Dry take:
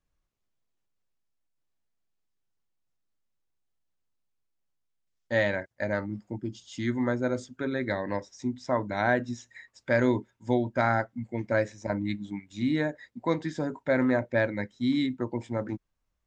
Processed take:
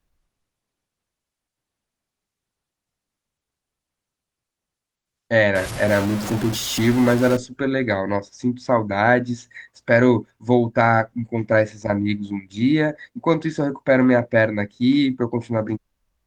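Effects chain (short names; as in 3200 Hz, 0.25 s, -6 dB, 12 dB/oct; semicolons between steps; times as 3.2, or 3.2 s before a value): 5.55–7.37 zero-crossing step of -30.5 dBFS; gain +9 dB; Opus 24 kbps 48000 Hz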